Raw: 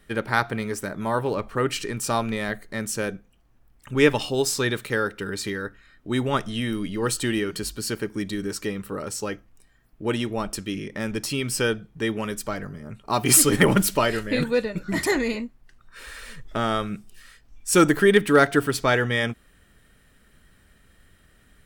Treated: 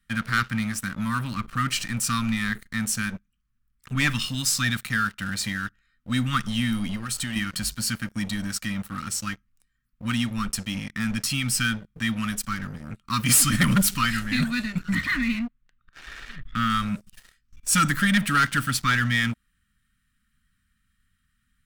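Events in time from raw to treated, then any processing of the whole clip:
6.92–7.36 s: compression, threshold -27 dBFS
14.95–16.70 s: steep low-pass 3.8 kHz
whole clip: elliptic band-stop 240–1200 Hz; waveshaping leveller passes 3; trim -7.5 dB

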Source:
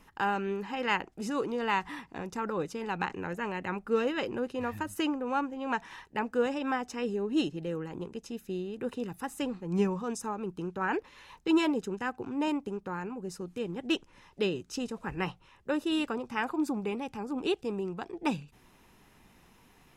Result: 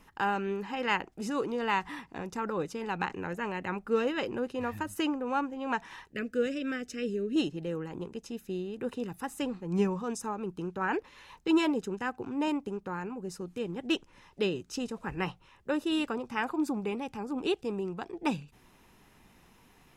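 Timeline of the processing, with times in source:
6.12–7.36 s: Butterworth band-stop 910 Hz, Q 1

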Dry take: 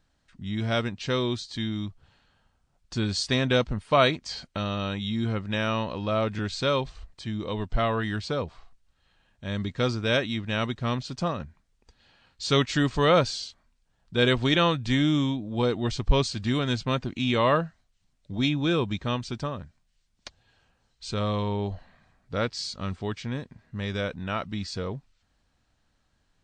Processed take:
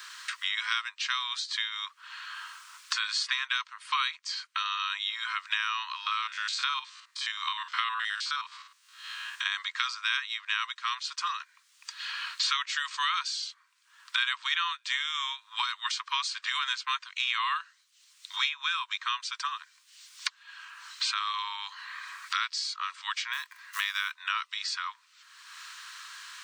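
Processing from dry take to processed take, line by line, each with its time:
5.96–9.52 s: spectrogram pixelated in time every 50 ms
23.33–24.12 s: short-mantissa float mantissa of 4-bit
whole clip: steep high-pass 1 kHz 96 dB/octave; three bands compressed up and down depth 100%; trim +2 dB

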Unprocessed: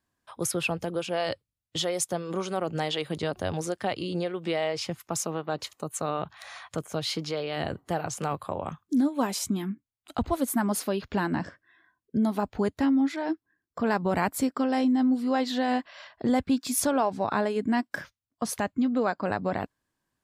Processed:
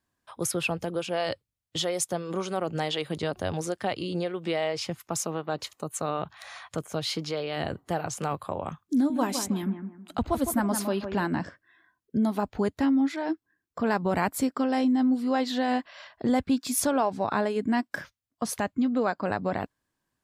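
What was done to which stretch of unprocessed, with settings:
8.94–11.26 s: bucket-brigade echo 159 ms, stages 2048, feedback 32%, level -7.5 dB

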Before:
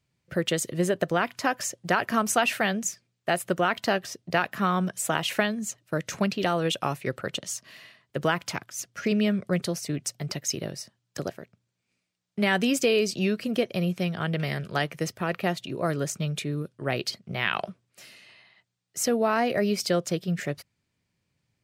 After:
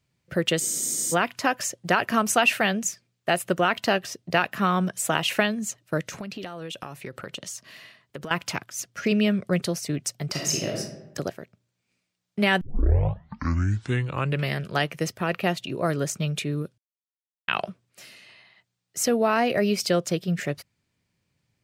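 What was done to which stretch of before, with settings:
0.62 s: spectral freeze 0.51 s
6.04–8.31 s: compression 16:1, threshold -33 dBFS
10.30–10.79 s: reverb throw, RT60 0.91 s, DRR -1.5 dB
12.61 s: tape start 1.93 s
16.78–17.48 s: mute
whole clip: dynamic bell 2.7 kHz, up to +5 dB, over -48 dBFS, Q 6.7; trim +2 dB

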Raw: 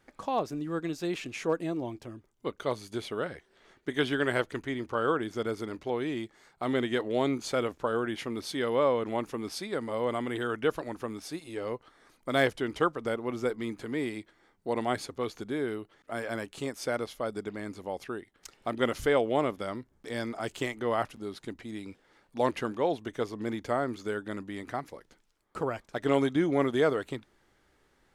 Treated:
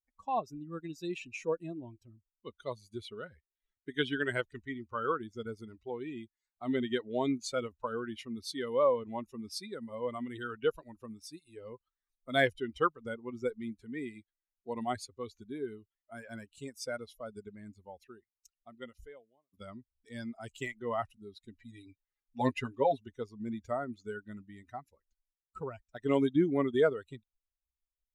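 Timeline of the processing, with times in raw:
17.79–19.53 s: fade out
21.56–23.01 s: comb 7.3 ms, depth 75%
whole clip: expander on every frequency bin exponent 2; low-pass 11 kHz; trim +2 dB

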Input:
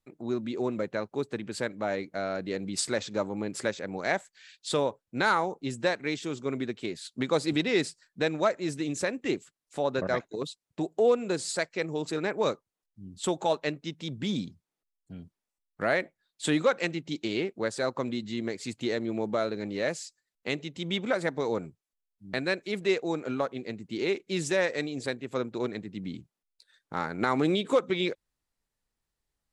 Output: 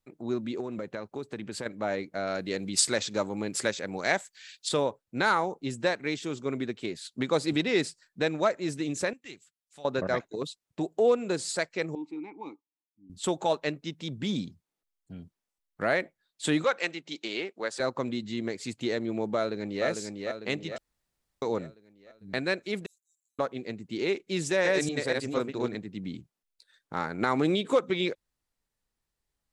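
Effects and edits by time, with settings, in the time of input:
0.60–1.66 s: compression 5:1, threshold -31 dBFS
2.27–4.69 s: treble shelf 2.4 kHz +7.5 dB
9.13–9.85 s: amplifier tone stack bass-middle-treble 5-5-5
11.95–13.10 s: vowel filter u
16.64–17.80 s: frequency weighting A
19.36–19.86 s: echo throw 450 ms, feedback 55%, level -4.5 dB
20.78–21.42 s: room tone
22.86–23.39 s: inverse Chebyshev high-pass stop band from 2 kHz, stop band 80 dB
24.41–25.75 s: chunks repeated in reverse 240 ms, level -0.5 dB

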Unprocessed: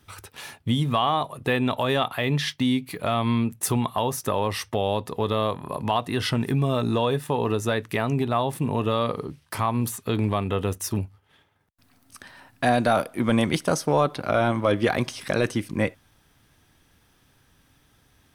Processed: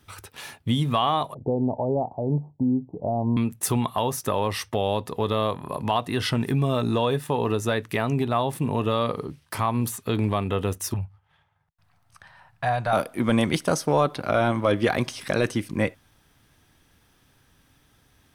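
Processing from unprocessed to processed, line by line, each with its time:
1.34–3.37 s: steep low-pass 890 Hz 72 dB/octave
10.94–12.93 s: FFT filter 160 Hz 0 dB, 260 Hz -22 dB, 490 Hz -10 dB, 800 Hz 0 dB, 16 kHz -16 dB

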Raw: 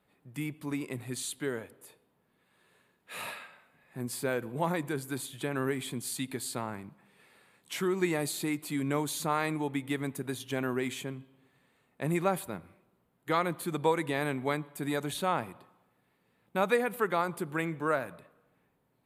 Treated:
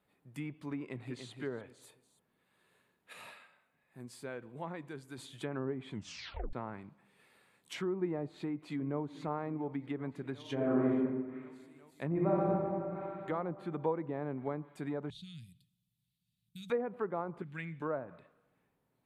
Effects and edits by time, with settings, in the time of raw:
0.78–1.32 s: echo throw 290 ms, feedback 25%, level -7 dB
3.13–5.18 s: gain -6.5 dB
5.90 s: tape stop 0.63 s
8.31–9.02 s: echo throw 360 ms, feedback 85%, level -16.5 dB
10.41–10.88 s: reverb throw, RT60 1.5 s, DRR -7.5 dB
12.07–12.49 s: reverb throw, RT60 2.9 s, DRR -6 dB
15.10–16.70 s: Chebyshev band-stop 160–3500 Hz, order 3
17.42–17.82 s: high-order bell 650 Hz -15 dB 2.4 oct
whole clip: low-pass that closes with the level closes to 850 Hz, closed at -27.5 dBFS; trim -5 dB

